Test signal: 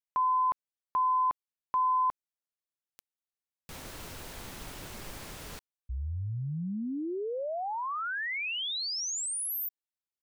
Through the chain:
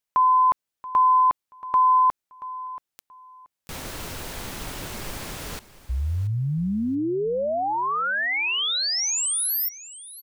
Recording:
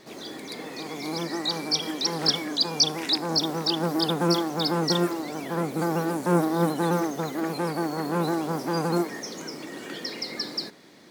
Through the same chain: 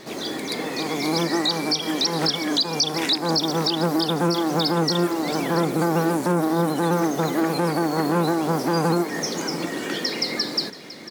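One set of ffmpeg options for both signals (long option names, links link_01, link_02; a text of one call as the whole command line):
ffmpeg -i in.wav -filter_complex "[0:a]asplit=2[link_01][link_02];[link_02]aecho=0:1:680|1360:0.141|0.0311[link_03];[link_01][link_03]amix=inputs=2:normalize=0,alimiter=limit=-21dB:level=0:latency=1:release=259,volume=9dB" out.wav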